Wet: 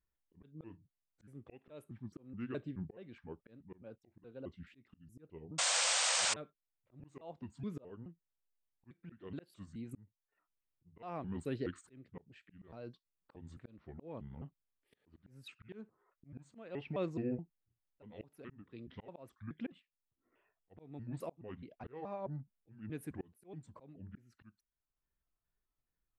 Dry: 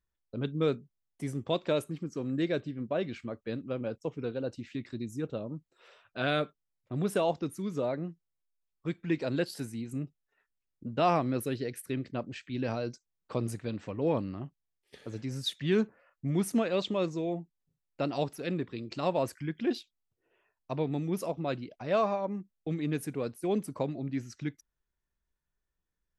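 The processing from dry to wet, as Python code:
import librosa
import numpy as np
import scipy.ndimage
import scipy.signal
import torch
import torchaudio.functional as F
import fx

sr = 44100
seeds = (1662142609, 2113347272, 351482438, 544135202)

y = fx.pitch_trill(x, sr, semitones=-5.5, every_ms=212)
y = fx.peak_eq(y, sr, hz=5900.0, db=-13.0, octaves=1.1)
y = fx.auto_swell(y, sr, attack_ms=692.0)
y = fx.spec_paint(y, sr, seeds[0], shape='noise', start_s=5.58, length_s=0.76, low_hz=480.0, high_hz=8900.0, level_db=-29.0)
y = y * librosa.db_to_amplitude(-3.0)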